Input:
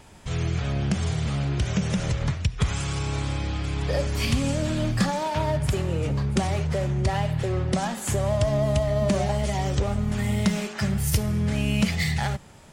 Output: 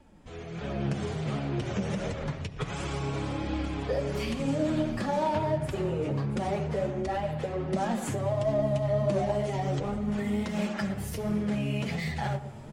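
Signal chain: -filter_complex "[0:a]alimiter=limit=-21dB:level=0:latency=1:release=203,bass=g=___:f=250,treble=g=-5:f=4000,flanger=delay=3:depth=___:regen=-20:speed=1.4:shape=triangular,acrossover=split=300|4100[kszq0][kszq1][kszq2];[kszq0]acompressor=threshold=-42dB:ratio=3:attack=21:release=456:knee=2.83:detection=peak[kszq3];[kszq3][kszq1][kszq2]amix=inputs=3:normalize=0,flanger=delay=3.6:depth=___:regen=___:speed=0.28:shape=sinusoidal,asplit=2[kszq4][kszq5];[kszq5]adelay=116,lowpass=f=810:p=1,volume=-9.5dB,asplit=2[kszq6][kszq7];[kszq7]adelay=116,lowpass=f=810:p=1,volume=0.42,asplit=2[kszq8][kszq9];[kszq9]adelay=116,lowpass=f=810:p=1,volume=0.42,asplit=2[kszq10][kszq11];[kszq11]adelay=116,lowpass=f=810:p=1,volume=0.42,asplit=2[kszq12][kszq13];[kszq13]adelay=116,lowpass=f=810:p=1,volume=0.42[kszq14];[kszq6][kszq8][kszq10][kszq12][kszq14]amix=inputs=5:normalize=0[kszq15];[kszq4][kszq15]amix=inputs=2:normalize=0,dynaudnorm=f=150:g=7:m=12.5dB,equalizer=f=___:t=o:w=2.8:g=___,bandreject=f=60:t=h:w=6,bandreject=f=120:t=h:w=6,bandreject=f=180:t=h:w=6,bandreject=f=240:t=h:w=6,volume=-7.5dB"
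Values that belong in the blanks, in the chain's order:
7, 7, 5, -44, 340, 8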